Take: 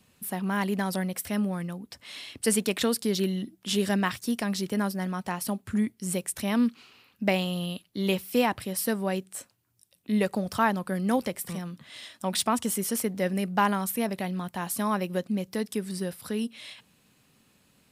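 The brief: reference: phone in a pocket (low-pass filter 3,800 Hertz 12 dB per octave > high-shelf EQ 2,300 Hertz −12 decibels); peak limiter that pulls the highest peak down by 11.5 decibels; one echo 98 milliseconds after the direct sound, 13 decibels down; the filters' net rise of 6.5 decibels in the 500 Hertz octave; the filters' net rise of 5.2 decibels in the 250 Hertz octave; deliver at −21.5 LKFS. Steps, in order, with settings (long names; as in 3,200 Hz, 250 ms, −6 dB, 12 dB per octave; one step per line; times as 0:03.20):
parametric band 250 Hz +5.5 dB
parametric band 500 Hz +7 dB
brickwall limiter −16.5 dBFS
low-pass filter 3,800 Hz 12 dB per octave
high-shelf EQ 2,300 Hz −12 dB
single-tap delay 98 ms −13 dB
level +6.5 dB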